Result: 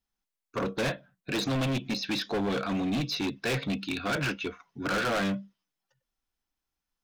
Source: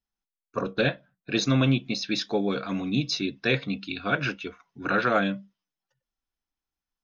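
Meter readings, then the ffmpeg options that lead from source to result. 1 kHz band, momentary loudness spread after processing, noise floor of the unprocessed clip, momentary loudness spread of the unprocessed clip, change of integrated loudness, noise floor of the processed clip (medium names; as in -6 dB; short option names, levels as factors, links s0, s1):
-3.5 dB, 8 LU, under -85 dBFS, 13 LU, -4.0 dB, under -85 dBFS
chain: -filter_complex "[0:a]acrossover=split=3600[s0][s1];[s1]acompressor=threshold=0.00891:ratio=4:attack=1:release=60[s2];[s0][s2]amix=inputs=2:normalize=0,volume=28.2,asoftclip=hard,volume=0.0355,volume=1.41"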